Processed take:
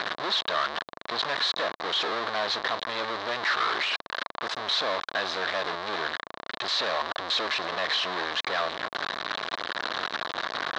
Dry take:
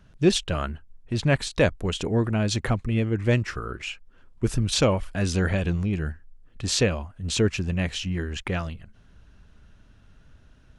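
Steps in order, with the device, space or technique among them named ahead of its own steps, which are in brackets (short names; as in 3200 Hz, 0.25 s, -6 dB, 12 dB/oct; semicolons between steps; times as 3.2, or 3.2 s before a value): home computer beeper (infinite clipping; speaker cabinet 530–4400 Hz, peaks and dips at 660 Hz +4 dB, 1100 Hz +8 dB, 1700 Hz +5 dB, 2600 Hz -5 dB, 3900 Hz +9 dB)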